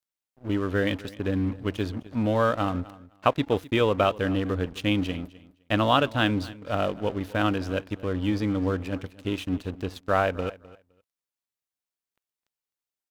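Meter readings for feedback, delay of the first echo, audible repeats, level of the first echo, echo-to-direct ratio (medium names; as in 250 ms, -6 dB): 17%, 257 ms, 2, -19.5 dB, -19.5 dB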